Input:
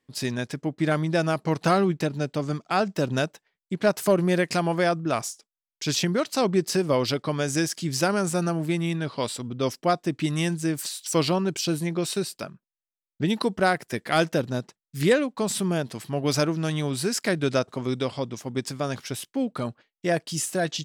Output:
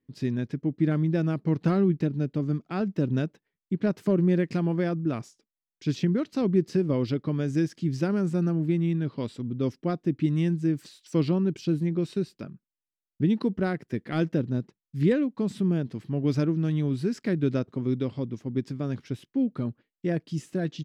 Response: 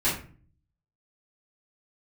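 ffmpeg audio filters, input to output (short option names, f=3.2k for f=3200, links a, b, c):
-af "firequalizer=gain_entry='entry(290,0);entry(670,-15);entry(1900,-12);entry(9100,-27)':delay=0.05:min_phase=1,volume=2dB"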